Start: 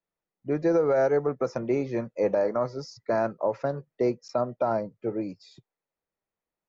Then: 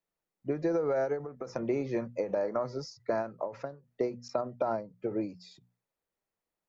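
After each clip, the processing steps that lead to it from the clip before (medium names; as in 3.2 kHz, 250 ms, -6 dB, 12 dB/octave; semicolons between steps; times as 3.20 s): hum notches 60/120/180/240 Hz; compression, threshold -26 dBFS, peak gain reduction 7.5 dB; endings held to a fixed fall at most 160 dB/s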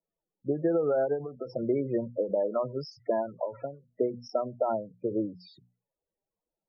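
loudest bins only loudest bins 16; trim +3 dB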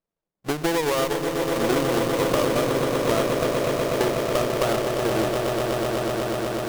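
square wave that keeps the level; echo with a slow build-up 123 ms, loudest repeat 8, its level -7 dB; sliding maximum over 17 samples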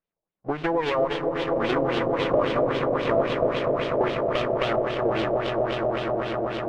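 LFO low-pass sine 3.7 Hz 630–3400 Hz; trim -3.5 dB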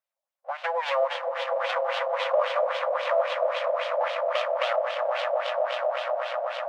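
brick-wall FIR high-pass 500 Hz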